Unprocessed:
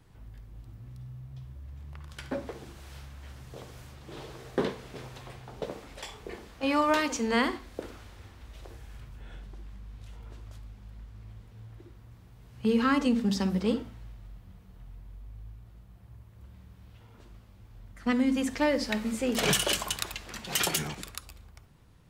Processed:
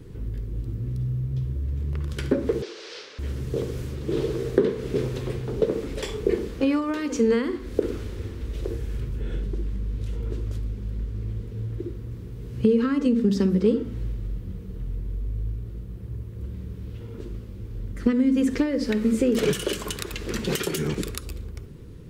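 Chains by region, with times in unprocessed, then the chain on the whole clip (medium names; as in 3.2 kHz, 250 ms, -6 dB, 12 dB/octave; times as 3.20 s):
2.62–3.19 s: Chebyshev band-pass 440–5200 Hz, order 3 + treble shelf 2.5 kHz +12 dB
whole clip: dynamic bell 1.4 kHz, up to +4 dB, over -45 dBFS, Q 1.1; compression 10:1, threshold -35 dBFS; resonant low shelf 560 Hz +8.5 dB, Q 3; trim +7.5 dB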